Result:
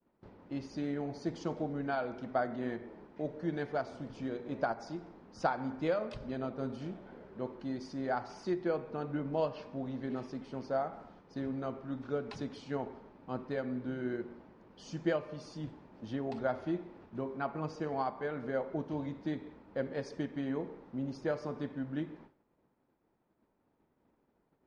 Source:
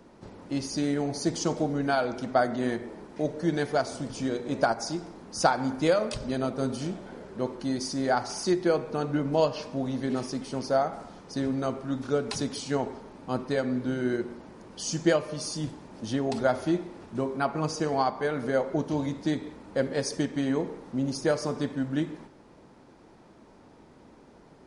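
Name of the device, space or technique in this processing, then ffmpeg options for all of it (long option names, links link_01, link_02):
hearing-loss simulation: -af "lowpass=2900,agate=range=-33dB:threshold=-44dB:ratio=3:detection=peak,volume=-8.5dB"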